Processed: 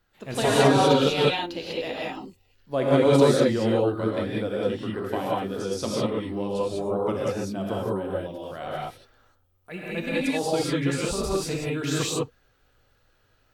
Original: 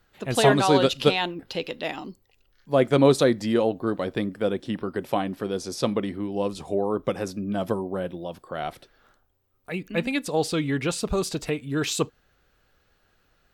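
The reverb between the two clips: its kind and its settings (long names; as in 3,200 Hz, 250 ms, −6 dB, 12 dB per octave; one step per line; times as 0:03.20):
reverb whose tail is shaped and stops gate 220 ms rising, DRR −5.5 dB
level −6.5 dB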